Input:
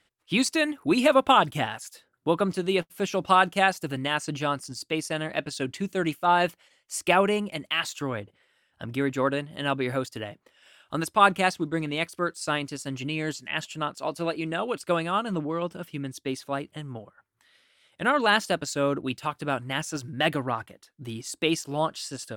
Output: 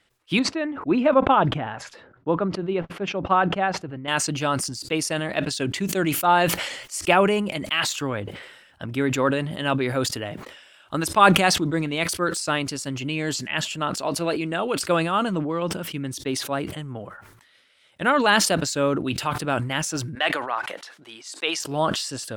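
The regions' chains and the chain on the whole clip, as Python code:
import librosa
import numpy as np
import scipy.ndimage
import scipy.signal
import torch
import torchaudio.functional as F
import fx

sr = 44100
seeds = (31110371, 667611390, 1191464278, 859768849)

y = fx.chain(x, sr, fx.bessel_lowpass(hz=1400.0, order=2),
    fx.upward_expand(threshold_db=-41.0, expansion=1.5), at=(0.39, 4.08))
y = fx.chain(y, sr, fx.highpass(hz=690.0, slope=12),
    fx.air_absorb(metres=51.0), at=(20.15, 21.6))
y = fx.high_shelf(y, sr, hz=8300.0, db=-3.5)
y = fx.sustainer(y, sr, db_per_s=53.0)
y = y * librosa.db_to_amplitude(3.0)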